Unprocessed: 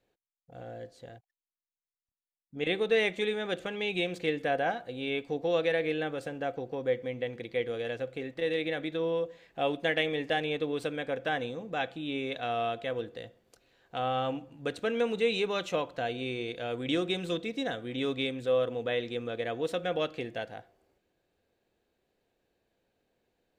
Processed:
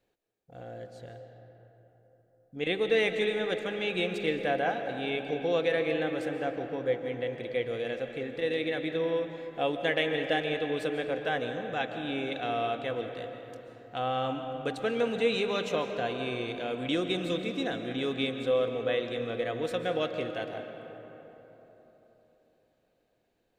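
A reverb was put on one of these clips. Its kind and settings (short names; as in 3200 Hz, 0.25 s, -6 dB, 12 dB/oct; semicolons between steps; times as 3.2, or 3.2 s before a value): digital reverb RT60 3.9 s, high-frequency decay 0.45×, pre-delay 0.1 s, DRR 6 dB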